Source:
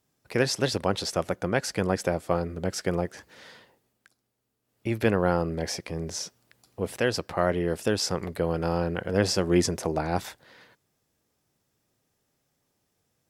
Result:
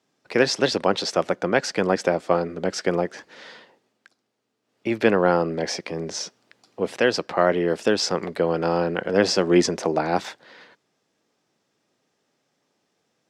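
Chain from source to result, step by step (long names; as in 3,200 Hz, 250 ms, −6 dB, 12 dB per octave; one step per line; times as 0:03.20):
three-way crossover with the lows and the highs turned down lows −23 dB, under 170 Hz, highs −21 dB, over 7,000 Hz
level +6 dB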